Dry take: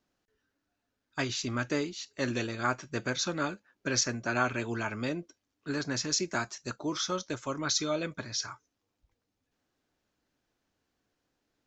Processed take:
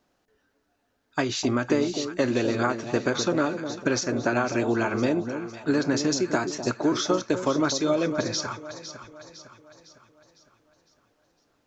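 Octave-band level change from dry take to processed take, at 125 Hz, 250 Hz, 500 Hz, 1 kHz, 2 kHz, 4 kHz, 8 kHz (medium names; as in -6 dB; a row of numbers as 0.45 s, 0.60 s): +5.5 dB, +10.0 dB, +10.0 dB, +5.5 dB, +3.5 dB, +2.0 dB, +1.0 dB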